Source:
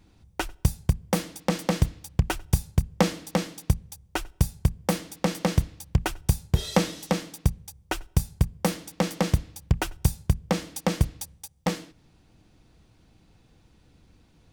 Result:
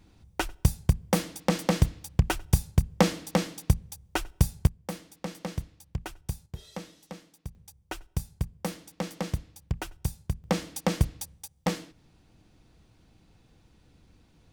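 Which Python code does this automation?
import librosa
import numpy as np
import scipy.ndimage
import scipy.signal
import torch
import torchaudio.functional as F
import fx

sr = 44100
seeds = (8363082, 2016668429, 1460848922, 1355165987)

y = fx.gain(x, sr, db=fx.steps((0.0, 0.0), (4.67, -11.0), (6.46, -17.5), (7.55, -8.0), (10.44, -1.5)))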